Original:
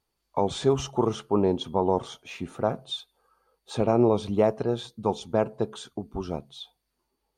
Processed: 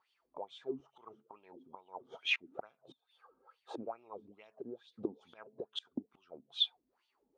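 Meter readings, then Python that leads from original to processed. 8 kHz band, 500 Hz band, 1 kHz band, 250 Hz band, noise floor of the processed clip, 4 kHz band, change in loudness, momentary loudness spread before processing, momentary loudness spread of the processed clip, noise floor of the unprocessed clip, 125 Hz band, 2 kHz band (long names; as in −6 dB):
−22.0 dB, −21.5 dB, −20.0 dB, −20.0 dB, −82 dBFS, −1.5 dB, −13.0 dB, 14 LU, 24 LU, −80 dBFS, −31.0 dB, +1.5 dB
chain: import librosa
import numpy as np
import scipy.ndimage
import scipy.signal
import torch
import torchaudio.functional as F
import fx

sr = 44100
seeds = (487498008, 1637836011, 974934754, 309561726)

y = fx.gate_flip(x, sr, shuts_db=-28.0, range_db=-26)
y = fx.wah_lfo(y, sr, hz=2.3, low_hz=250.0, high_hz=3300.0, q=5.6)
y = y * 10.0 ** (15.0 / 20.0)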